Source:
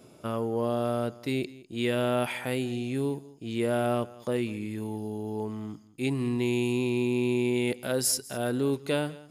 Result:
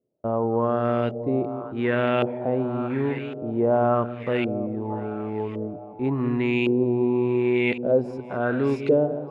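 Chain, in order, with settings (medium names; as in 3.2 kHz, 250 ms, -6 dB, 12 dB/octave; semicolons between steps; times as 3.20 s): gate -46 dBFS, range -32 dB; two-band feedback delay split 520 Hz, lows 192 ms, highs 632 ms, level -11 dB; LFO low-pass saw up 0.9 Hz 460–2700 Hz; trim +3.5 dB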